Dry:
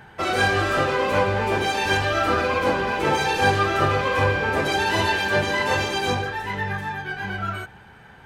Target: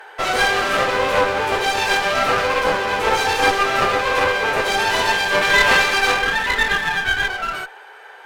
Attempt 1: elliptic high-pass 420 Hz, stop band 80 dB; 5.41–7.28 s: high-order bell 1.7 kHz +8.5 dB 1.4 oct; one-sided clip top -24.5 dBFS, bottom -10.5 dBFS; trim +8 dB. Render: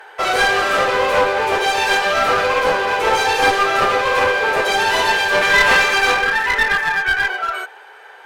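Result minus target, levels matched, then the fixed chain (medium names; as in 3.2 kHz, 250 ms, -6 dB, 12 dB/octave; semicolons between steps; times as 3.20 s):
one-sided clip: distortion -4 dB
elliptic high-pass 420 Hz, stop band 80 dB; 5.41–7.28 s: high-order bell 1.7 kHz +8.5 dB 1.4 oct; one-sided clip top -36.5 dBFS, bottom -10.5 dBFS; trim +8 dB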